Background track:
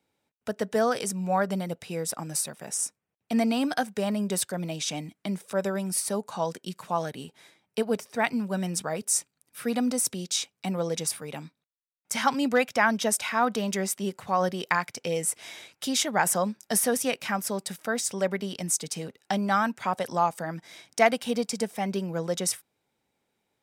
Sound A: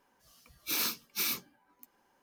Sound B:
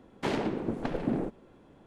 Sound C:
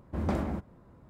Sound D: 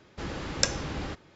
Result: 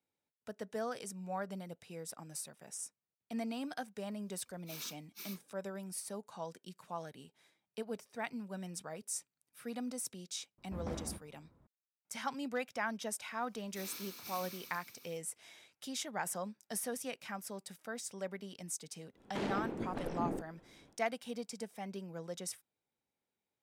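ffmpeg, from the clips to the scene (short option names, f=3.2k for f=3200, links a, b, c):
-filter_complex "[1:a]asplit=2[a][b];[0:a]volume=-14.5dB[c];[b]aecho=1:1:80|168|264.8|371.3|488.4|617.2|759:0.794|0.631|0.501|0.398|0.316|0.251|0.2[d];[2:a]alimiter=limit=-21.5dB:level=0:latency=1:release=19[e];[a]atrim=end=2.22,asetpts=PTS-STARTPTS,volume=-16.5dB,afade=t=in:d=0.004:c=hsin,afade=t=out:st=2.216:d=0.004:c=hsin,adelay=4000[f];[3:a]atrim=end=1.09,asetpts=PTS-STARTPTS,volume=-12dB,afade=t=in:d=0.004:c=hsin,afade=t=out:st=1.086:d=0.004:c=hsin,adelay=466578S[g];[d]atrim=end=2.22,asetpts=PTS-STARTPTS,volume=-17.5dB,afade=t=in:d=0.004:c=hsin,afade=t=out:st=2.216:d=0.004:c=hsin,adelay=13070[h];[e]atrim=end=1.86,asetpts=PTS-STARTPTS,volume=-6.5dB,afade=t=in:d=0.1,afade=t=out:st=1.76:d=0.1,adelay=19120[i];[c][f][g][h][i]amix=inputs=5:normalize=0"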